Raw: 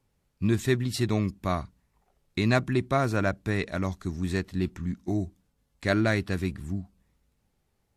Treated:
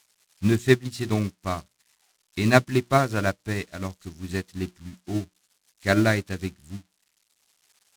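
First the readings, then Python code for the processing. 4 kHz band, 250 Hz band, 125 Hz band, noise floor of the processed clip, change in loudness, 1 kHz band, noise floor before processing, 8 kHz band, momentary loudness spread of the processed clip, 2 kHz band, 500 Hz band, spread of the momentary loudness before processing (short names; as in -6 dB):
+3.0 dB, +2.0 dB, +1.5 dB, -73 dBFS, +3.0 dB, +4.5 dB, -74 dBFS, +4.5 dB, 18 LU, +4.0 dB, +4.0 dB, 9 LU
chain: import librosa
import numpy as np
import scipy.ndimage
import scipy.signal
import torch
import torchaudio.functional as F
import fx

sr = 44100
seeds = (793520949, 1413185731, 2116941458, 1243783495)

y = x + 0.5 * 10.0 ** (-21.5 / 20.0) * np.diff(np.sign(x), prepend=np.sign(x[:1]))
y = fx.air_absorb(y, sr, metres=57.0)
y = fx.hum_notches(y, sr, base_hz=60, count=10)
y = fx.quant_float(y, sr, bits=4)
y = fx.upward_expand(y, sr, threshold_db=-45.0, expansion=2.5)
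y = y * 10.0 ** (9.0 / 20.0)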